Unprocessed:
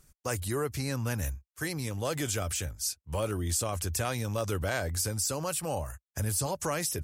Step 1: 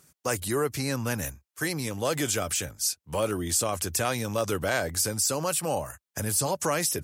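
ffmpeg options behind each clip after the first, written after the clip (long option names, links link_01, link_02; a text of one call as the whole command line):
ffmpeg -i in.wav -af "highpass=150,volume=5dB" out.wav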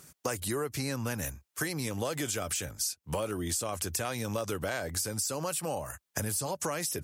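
ffmpeg -i in.wav -af "acompressor=threshold=-36dB:ratio=6,volume=5.5dB" out.wav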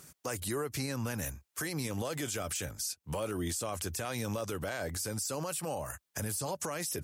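ffmpeg -i in.wav -af "alimiter=level_in=2dB:limit=-24dB:level=0:latency=1:release=29,volume=-2dB" out.wav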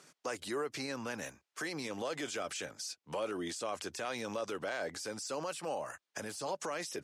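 ffmpeg -i in.wav -af "highpass=290,lowpass=5400" out.wav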